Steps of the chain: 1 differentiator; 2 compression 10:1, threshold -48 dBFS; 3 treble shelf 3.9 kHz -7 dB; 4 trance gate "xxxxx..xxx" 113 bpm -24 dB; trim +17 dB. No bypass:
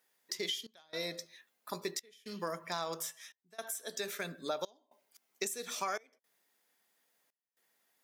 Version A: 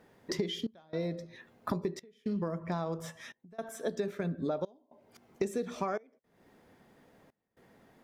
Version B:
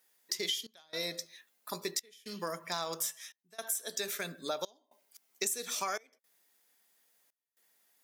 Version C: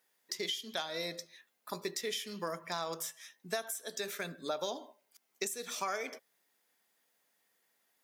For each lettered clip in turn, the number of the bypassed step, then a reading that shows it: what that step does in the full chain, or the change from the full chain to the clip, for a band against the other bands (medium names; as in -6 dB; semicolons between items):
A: 1, 125 Hz band +15.5 dB; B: 3, 8 kHz band +5.5 dB; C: 4, loudness change +1.0 LU